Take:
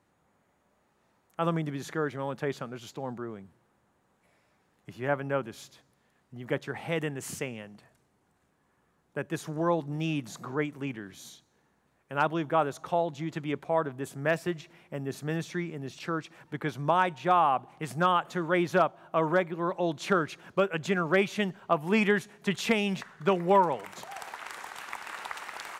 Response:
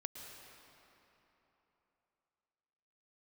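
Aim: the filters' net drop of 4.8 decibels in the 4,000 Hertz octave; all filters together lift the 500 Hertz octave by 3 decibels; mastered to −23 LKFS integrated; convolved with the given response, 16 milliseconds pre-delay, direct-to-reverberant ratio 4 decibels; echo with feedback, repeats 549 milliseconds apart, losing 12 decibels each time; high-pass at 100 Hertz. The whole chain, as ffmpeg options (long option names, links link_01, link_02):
-filter_complex "[0:a]highpass=100,equalizer=frequency=500:width_type=o:gain=4,equalizer=frequency=4000:width_type=o:gain=-7,aecho=1:1:549|1098|1647:0.251|0.0628|0.0157,asplit=2[link_01][link_02];[1:a]atrim=start_sample=2205,adelay=16[link_03];[link_02][link_03]afir=irnorm=-1:irlink=0,volume=-2dB[link_04];[link_01][link_04]amix=inputs=2:normalize=0,volume=4.5dB"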